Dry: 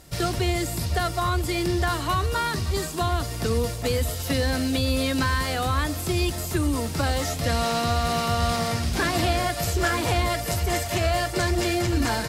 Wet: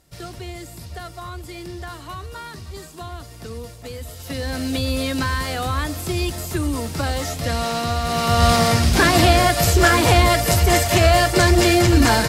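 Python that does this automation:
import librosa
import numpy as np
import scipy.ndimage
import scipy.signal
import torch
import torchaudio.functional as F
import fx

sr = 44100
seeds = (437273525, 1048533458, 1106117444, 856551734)

y = fx.gain(x, sr, db=fx.line((3.98, -9.5), (4.71, 1.0), (8.05, 1.0), (8.46, 9.0)))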